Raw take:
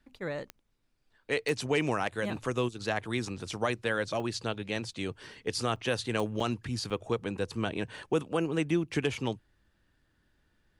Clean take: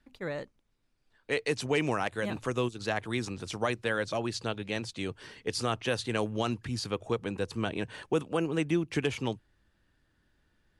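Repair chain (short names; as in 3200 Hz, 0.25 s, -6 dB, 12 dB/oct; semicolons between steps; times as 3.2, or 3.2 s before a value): de-click; interpolate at 4.2/5.76/6.4/6.9, 3.6 ms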